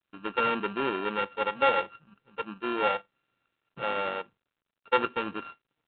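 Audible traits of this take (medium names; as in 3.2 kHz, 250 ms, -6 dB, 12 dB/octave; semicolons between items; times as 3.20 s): a buzz of ramps at a fixed pitch in blocks of 32 samples; G.726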